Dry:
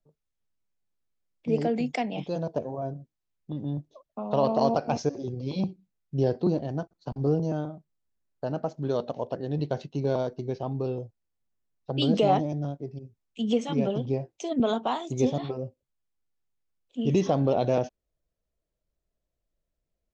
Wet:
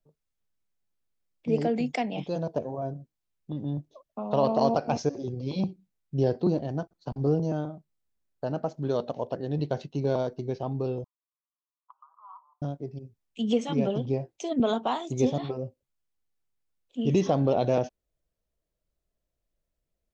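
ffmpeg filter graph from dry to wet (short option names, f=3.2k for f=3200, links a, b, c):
-filter_complex "[0:a]asettb=1/sr,asplit=3[a][b][c];[a]atrim=end=11.044[d];[b]atrim=start=11.04:end=12.62,asetpts=PTS-STARTPTS,afade=t=in:d=0.004:c=qsin,afade=t=out:st=1.576:d=0.004:c=qsin,asuperpass=centerf=1100:order=8:qfactor=3.5,acompressor=threshold=-44dB:ratio=4:attack=3.2:release=140:knee=1:detection=peak[e];[c]atrim=start=12.616[f];[d][e]acrossfade=d=0.004:c1=hsin:c2=qsin[g];[g][f]acrossfade=d=0.004:c1=qsin:c2=hsin"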